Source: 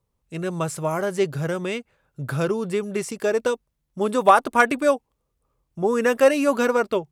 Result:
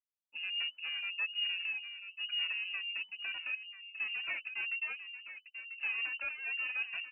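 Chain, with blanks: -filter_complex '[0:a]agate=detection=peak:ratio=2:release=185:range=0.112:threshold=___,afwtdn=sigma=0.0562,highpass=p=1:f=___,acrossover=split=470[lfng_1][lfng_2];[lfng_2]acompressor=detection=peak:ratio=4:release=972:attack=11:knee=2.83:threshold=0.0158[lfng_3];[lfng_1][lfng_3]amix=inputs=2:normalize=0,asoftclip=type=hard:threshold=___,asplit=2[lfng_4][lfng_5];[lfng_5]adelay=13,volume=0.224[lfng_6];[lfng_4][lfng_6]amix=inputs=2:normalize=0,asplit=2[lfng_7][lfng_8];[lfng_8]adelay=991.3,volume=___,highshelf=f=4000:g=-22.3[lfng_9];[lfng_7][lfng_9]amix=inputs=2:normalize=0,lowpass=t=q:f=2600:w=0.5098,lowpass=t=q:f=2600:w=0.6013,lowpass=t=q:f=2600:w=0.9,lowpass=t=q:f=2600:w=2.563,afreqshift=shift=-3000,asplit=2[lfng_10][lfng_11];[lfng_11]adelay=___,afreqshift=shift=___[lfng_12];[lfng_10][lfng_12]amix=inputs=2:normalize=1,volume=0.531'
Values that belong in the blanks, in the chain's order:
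0.0158, 41, 0.0447, 0.355, 2, -2.2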